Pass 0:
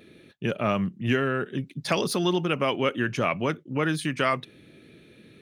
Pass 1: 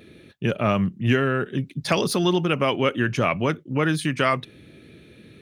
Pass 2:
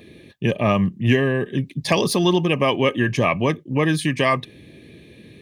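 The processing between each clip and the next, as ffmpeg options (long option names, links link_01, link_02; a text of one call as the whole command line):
ffmpeg -i in.wav -af "equalizer=frequency=70:width=0.94:gain=7,volume=3dB" out.wav
ffmpeg -i in.wav -af "asuperstop=centerf=1400:order=20:qfactor=4.4,volume=3dB" out.wav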